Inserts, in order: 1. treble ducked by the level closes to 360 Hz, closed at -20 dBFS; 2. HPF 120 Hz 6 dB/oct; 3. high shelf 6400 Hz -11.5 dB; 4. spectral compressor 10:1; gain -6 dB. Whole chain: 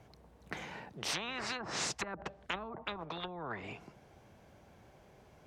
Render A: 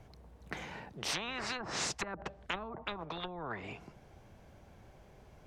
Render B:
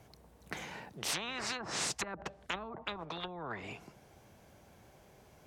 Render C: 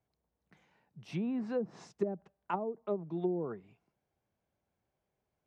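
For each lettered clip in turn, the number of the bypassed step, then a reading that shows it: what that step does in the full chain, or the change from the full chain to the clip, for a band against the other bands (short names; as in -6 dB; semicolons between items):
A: 2, momentary loudness spread change +12 LU; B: 3, 8 kHz band +3.0 dB; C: 4, 2 kHz band -20.0 dB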